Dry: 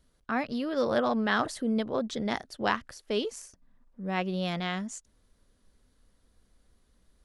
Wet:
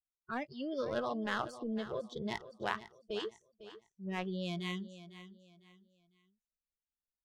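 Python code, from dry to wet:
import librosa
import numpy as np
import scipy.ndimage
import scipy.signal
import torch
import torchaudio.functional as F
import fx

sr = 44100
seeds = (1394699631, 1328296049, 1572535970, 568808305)

p1 = fx.lowpass(x, sr, hz=3800.0, slope=6)
p2 = fx.power_curve(p1, sr, exponent=1.4)
p3 = fx.noise_reduce_blind(p2, sr, reduce_db=24)
p4 = fx.over_compress(p3, sr, threshold_db=-40.0, ratio=-1.0)
p5 = p3 + (p4 * 10.0 ** (-1.0 / 20.0))
p6 = fx.env_lowpass(p5, sr, base_hz=1200.0, full_db=-29.5)
p7 = p6 + fx.echo_feedback(p6, sr, ms=502, feedback_pct=31, wet_db=-14.0, dry=0)
y = p7 * 10.0 ** (-5.5 / 20.0)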